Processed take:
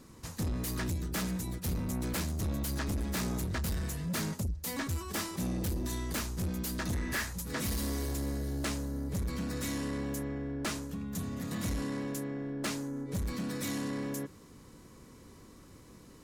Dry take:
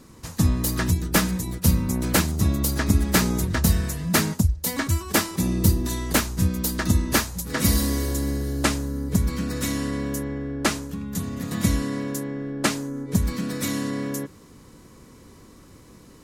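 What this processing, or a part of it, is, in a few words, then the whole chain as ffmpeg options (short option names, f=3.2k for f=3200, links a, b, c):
saturation between pre-emphasis and de-emphasis: -filter_complex "[0:a]asettb=1/sr,asplit=3[a][b][c];[a]atrim=end=6.924[d];[b]atrim=start=6.92:end=7.33,asetpts=PTS-STARTPTS,afade=t=in:d=0.004:c=qsin,afade=t=out:st=0.406:d=0.004:c=qsin,equalizer=f=1.8k:t=o:w=0.67:g=12[e];[c]atrim=start=7.326[f];[d][e]acrossfade=d=0.004:c1=hsin:c2=qsin[g];[g][f]acrossfade=d=0.004:c1=qsin:c2=hsin,highshelf=f=11k:g=8,asoftclip=type=tanh:threshold=-24dB,highshelf=f=11k:g=-8,volume=-5.5dB"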